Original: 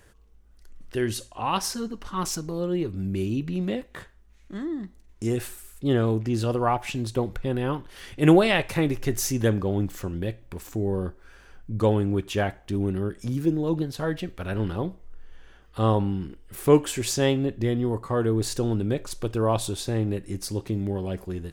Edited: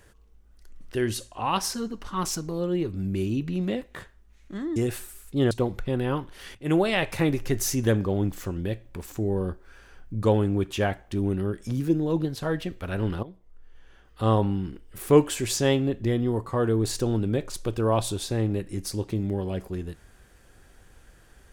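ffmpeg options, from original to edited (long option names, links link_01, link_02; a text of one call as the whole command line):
ffmpeg -i in.wav -filter_complex "[0:a]asplit=5[link_01][link_02][link_03][link_04][link_05];[link_01]atrim=end=4.762[link_06];[link_02]atrim=start=5.248:end=6.002[link_07];[link_03]atrim=start=7.078:end=8.12,asetpts=PTS-STARTPTS,afade=type=out:start_time=1.038:duration=0.004:curve=hsin:silence=0.223872[link_08];[link_04]atrim=start=8.12:end=14.8,asetpts=PTS-STARTPTS,afade=type=in:duration=0.62:silence=0.223872,afade=type=out:start_time=6.676:duration=0.004:curve=hsin:silence=0.141254[link_09];[link_05]atrim=start=14.8,asetpts=PTS-STARTPTS,afade=type=in:duration=1.05:silence=0.141254[link_10];[link_06][link_07]acrossfade=duration=0.004:curve1=hsin:curve2=hsin[link_11];[link_08][link_09][link_10]concat=n=3:v=0:a=1[link_12];[link_11][link_12]acrossfade=duration=0.004:curve1=hsin:curve2=hsin" out.wav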